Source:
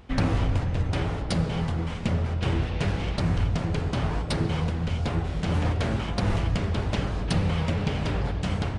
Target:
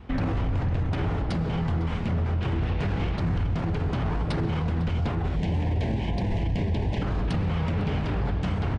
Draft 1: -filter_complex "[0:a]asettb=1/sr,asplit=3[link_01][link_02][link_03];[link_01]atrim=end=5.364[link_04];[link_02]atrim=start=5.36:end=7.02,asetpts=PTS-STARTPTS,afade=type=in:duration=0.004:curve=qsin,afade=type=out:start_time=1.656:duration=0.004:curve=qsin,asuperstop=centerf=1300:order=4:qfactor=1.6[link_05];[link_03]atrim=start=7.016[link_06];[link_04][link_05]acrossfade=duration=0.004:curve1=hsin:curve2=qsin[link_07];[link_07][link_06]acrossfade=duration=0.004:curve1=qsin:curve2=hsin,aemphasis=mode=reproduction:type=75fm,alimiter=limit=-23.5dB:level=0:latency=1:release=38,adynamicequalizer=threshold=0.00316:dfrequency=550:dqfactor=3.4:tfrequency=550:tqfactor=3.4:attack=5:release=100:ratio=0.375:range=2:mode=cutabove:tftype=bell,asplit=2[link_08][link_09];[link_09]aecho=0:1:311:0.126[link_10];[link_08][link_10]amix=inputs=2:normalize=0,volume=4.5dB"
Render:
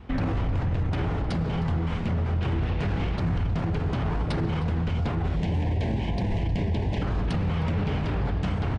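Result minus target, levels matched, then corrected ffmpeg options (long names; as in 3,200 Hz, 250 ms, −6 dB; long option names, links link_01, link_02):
echo 192 ms early
-filter_complex "[0:a]asettb=1/sr,asplit=3[link_01][link_02][link_03];[link_01]atrim=end=5.364[link_04];[link_02]atrim=start=5.36:end=7.02,asetpts=PTS-STARTPTS,afade=type=in:duration=0.004:curve=qsin,afade=type=out:start_time=1.656:duration=0.004:curve=qsin,asuperstop=centerf=1300:order=4:qfactor=1.6[link_05];[link_03]atrim=start=7.016[link_06];[link_04][link_05]acrossfade=duration=0.004:curve1=hsin:curve2=qsin[link_07];[link_07][link_06]acrossfade=duration=0.004:curve1=qsin:curve2=hsin,aemphasis=mode=reproduction:type=75fm,alimiter=limit=-23.5dB:level=0:latency=1:release=38,adynamicequalizer=threshold=0.00316:dfrequency=550:dqfactor=3.4:tfrequency=550:tqfactor=3.4:attack=5:release=100:ratio=0.375:range=2:mode=cutabove:tftype=bell,asplit=2[link_08][link_09];[link_09]aecho=0:1:503:0.126[link_10];[link_08][link_10]amix=inputs=2:normalize=0,volume=4.5dB"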